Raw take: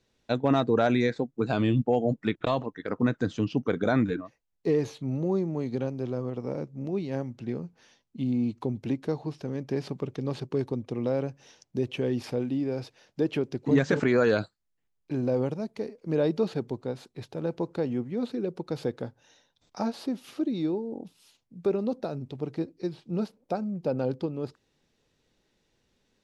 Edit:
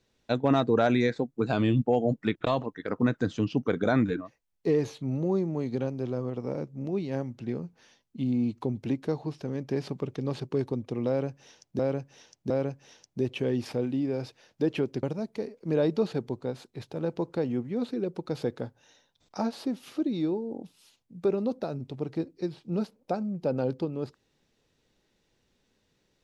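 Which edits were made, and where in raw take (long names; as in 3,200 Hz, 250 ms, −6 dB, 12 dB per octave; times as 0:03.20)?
0:11.08–0:11.79: repeat, 3 plays
0:13.61–0:15.44: remove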